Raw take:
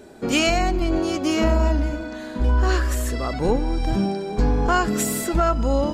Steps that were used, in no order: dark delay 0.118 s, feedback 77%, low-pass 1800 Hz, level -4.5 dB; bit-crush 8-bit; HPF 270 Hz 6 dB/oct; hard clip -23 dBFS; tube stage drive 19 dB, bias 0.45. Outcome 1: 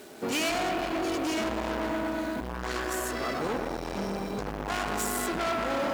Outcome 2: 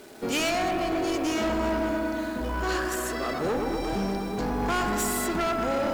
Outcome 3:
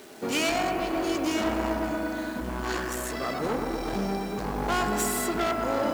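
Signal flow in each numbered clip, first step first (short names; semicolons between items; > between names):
bit-crush > dark delay > hard clip > tube stage > HPF; HPF > bit-crush > tube stage > dark delay > hard clip; tube stage > hard clip > dark delay > bit-crush > HPF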